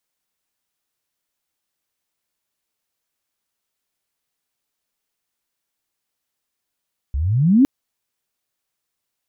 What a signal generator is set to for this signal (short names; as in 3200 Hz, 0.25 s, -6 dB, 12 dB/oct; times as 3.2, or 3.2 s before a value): chirp logarithmic 63 Hz -> 290 Hz -19 dBFS -> -8 dBFS 0.51 s